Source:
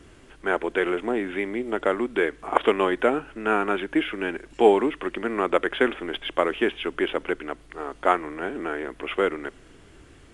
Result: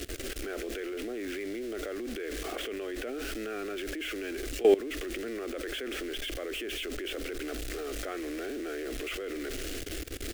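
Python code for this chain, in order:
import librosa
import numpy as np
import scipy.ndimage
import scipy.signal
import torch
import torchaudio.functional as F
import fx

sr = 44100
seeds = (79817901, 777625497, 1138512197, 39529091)

y = x + 0.5 * 10.0 ** (-29.0 / 20.0) * np.sign(x)
y = fx.transient(y, sr, attack_db=-5, sustain_db=1)
y = fx.fixed_phaser(y, sr, hz=390.0, stages=4)
y = fx.level_steps(y, sr, step_db=18)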